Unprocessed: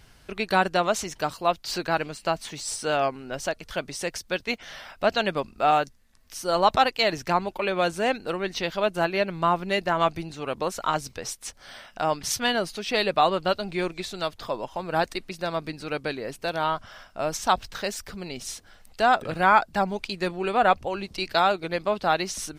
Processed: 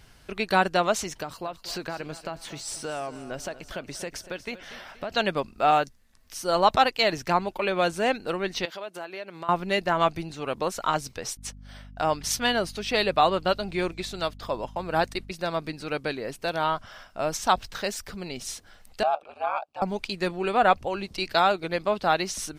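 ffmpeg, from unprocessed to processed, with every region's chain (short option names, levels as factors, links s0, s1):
-filter_complex "[0:a]asettb=1/sr,asplit=3[s0][s1][s2];[s0]atrim=end=1.224[s3];[s1]atrim=start=1.22:end=5.11,asetpts=PTS-STARTPTS,afade=t=in:d=0.004:c=qsin,afade=t=out:st=3.886:d=0.004:c=qsin,equalizer=f=7000:t=o:w=2.7:g=-3.5,acompressor=threshold=0.0398:ratio=12:attack=3.2:release=140:knee=1:detection=peak,aecho=1:1:238|476|714|952:0.178|0.08|0.036|0.0162,atrim=end_sample=171549[s4];[s2]atrim=start=5.106[s5];[s3][s4]acrossfade=d=0.004:c1=hsin:c2=qsin[s6];[s6][s5]acrossfade=d=0.004:c1=qsin:c2=hsin,asettb=1/sr,asplit=3[s7][s8][s9];[s7]atrim=end=8.654[s10];[s8]atrim=start=8.65:end=9.49,asetpts=PTS-STARTPTS,afade=t=in:d=0.004:c=qsin,afade=t=out:st=0.836:d=0.004:c=qsin,highpass=310,acompressor=threshold=0.0158:ratio=3:attack=3.2:release=140:knee=1:detection=peak[s11];[s9]atrim=start=9.486[s12];[s10][s11]acrossfade=d=0.004:c1=hsin:c2=qsin[s13];[s13][s12]acrossfade=d=0.004:c1=qsin:c2=hsin,asettb=1/sr,asplit=3[s14][s15][s16];[s14]atrim=end=11.374[s17];[s15]atrim=start=11.37:end=15.32,asetpts=PTS-STARTPTS,afade=t=in:d=0.004:c=qsin,afade=t=out:st=3.946:d=0.004:c=qsin,agate=range=0.0224:threshold=0.0112:ratio=3:release=100:detection=peak,aeval=exprs='val(0)+0.00631*(sin(2*PI*50*n/s)+sin(2*PI*2*50*n/s)/2+sin(2*PI*3*50*n/s)/3+sin(2*PI*4*50*n/s)/4+sin(2*PI*5*50*n/s)/5)':c=same[s18];[s16]atrim=start=15.316[s19];[s17][s18]acrossfade=d=0.004:c1=hsin:c2=qsin[s20];[s20][s19]acrossfade=d=0.004:c1=qsin:c2=hsin,asettb=1/sr,asplit=3[s21][s22][s23];[s21]atrim=end=19.034[s24];[s22]atrim=start=19.03:end=19.82,asetpts=PTS-STARTPTS,afade=t=in:d=0.004:c=qsin,afade=t=out:st=0.786:d=0.004:c=qsin,asplit=3[s25][s26][s27];[s25]bandpass=f=730:t=q:w=8,volume=1[s28];[s26]bandpass=f=1090:t=q:w=8,volume=0.501[s29];[s27]bandpass=f=2440:t=q:w=8,volume=0.355[s30];[s28][s29][s30]amix=inputs=3:normalize=0,highshelf=f=2700:g=12,aeval=exprs='val(0)*sin(2*PI*75*n/s)':c=same[s31];[s23]atrim=start=19.816[s32];[s24][s31]acrossfade=d=0.004:c1=hsin:c2=qsin[s33];[s33][s32]acrossfade=d=0.004:c1=qsin:c2=hsin"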